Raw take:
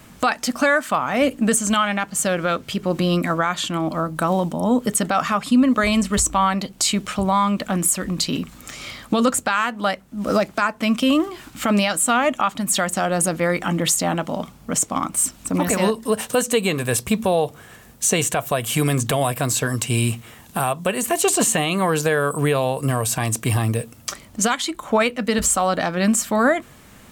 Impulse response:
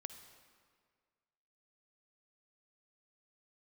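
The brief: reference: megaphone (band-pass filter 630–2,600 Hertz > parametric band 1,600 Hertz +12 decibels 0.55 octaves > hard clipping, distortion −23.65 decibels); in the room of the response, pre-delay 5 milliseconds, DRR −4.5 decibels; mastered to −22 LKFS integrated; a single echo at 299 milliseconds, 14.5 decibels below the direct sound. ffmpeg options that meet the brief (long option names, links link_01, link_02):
-filter_complex "[0:a]aecho=1:1:299:0.188,asplit=2[link_01][link_02];[1:a]atrim=start_sample=2205,adelay=5[link_03];[link_02][link_03]afir=irnorm=-1:irlink=0,volume=8.5dB[link_04];[link_01][link_04]amix=inputs=2:normalize=0,highpass=630,lowpass=2600,equalizer=frequency=1600:width_type=o:width=0.55:gain=12,asoftclip=type=hard:threshold=-0.5dB,volume=-7.5dB"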